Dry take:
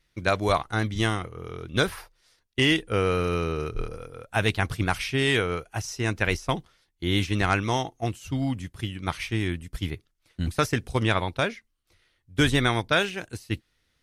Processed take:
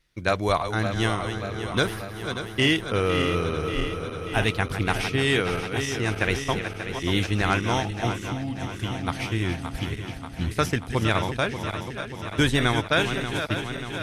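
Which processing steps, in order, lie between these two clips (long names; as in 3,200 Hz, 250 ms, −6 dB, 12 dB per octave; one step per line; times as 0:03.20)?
feedback delay that plays each chunk backwards 293 ms, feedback 80%, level −8.5 dB
0:08.12–0:08.83: downward compressor 5 to 1, threshold −26 dBFS, peak gain reduction 6.5 dB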